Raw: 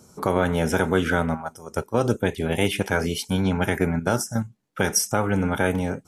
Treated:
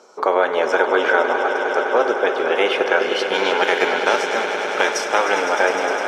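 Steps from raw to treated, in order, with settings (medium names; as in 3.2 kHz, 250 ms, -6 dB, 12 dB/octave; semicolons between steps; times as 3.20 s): 3.33–5.40 s: formants flattened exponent 0.6; high-pass 430 Hz 24 dB/octave; in parallel at 0 dB: compression, threshold -32 dBFS, peak gain reduction 14.5 dB; on the sum: distance through air 180 m; echo with a slow build-up 102 ms, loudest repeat 5, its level -11.5 dB; trim +5.5 dB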